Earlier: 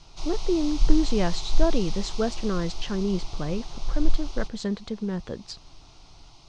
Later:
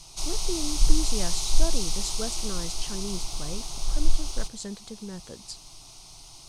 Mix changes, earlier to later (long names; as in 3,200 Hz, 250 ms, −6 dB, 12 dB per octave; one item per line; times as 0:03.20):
speech −9.5 dB
master: remove high-frequency loss of the air 180 metres